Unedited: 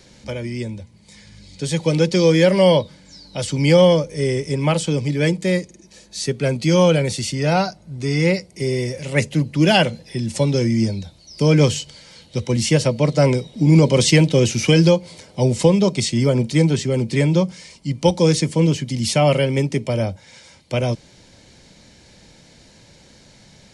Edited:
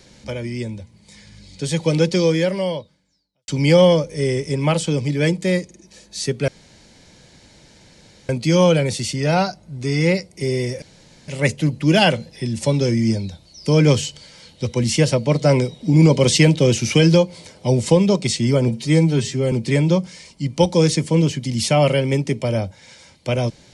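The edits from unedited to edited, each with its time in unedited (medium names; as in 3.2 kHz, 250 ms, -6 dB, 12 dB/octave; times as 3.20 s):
2.08–3.48 s: fade out quadratic
6.48 s: insert room tone 1.81 s
9.01 s: insert room tone 0.46 s
16.41–16.97 s: stretch 1.5×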